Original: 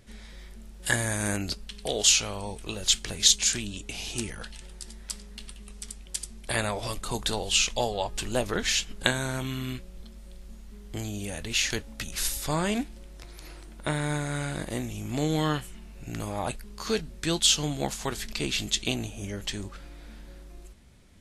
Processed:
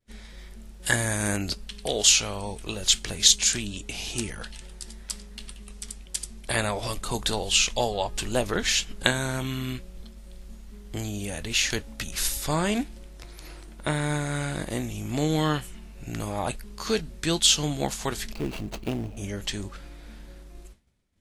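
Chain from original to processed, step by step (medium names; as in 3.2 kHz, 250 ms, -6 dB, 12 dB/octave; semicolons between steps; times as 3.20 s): 18.34–19.17 s: median filter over 25 samples; expander -43 dBFS; trim +2 dB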